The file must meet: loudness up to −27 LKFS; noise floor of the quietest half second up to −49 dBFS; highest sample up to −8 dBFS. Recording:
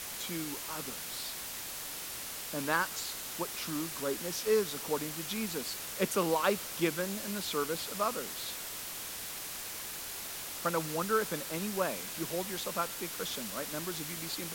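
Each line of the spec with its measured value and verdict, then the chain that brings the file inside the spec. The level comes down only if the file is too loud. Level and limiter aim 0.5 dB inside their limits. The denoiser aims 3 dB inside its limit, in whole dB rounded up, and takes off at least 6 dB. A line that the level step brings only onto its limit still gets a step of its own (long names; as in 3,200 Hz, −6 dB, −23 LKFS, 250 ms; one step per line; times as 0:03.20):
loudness −34.5 LKFS: in spec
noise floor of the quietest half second −41 dBFS: out of spec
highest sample −14.0 dBFS: in spec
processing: broadband denoise 11 dB, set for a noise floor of −41 dBFS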